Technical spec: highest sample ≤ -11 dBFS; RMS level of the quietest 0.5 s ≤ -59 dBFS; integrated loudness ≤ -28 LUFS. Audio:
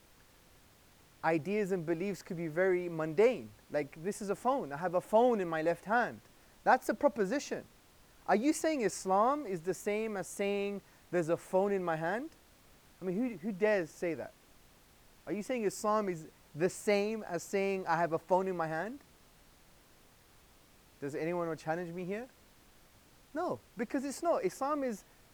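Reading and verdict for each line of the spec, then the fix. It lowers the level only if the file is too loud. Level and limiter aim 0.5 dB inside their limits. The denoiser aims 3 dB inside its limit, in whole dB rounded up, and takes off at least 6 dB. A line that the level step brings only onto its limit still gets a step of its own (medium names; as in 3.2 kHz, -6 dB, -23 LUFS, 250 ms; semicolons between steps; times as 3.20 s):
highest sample -13.5 dBFS: pass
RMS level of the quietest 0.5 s -62 dBFS: pass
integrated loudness -34.0 LUFS: pass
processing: none needed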